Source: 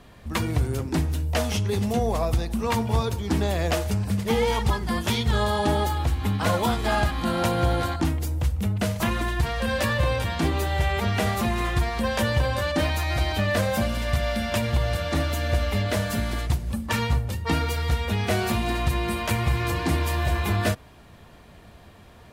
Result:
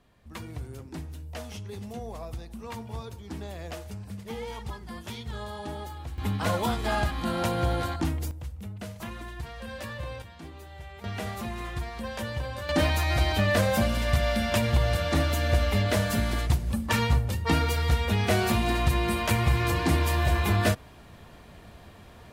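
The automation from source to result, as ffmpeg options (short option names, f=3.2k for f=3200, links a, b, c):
-af "asetnsamples=n=441:p=0,asendcmd='6.18 volume volume -4dB;8.31 volume volume -13.5dB;10.22 volume volume -20dB;11.04 volume volume -10dB;12.69 volume volume 0dB',volume=-14dB"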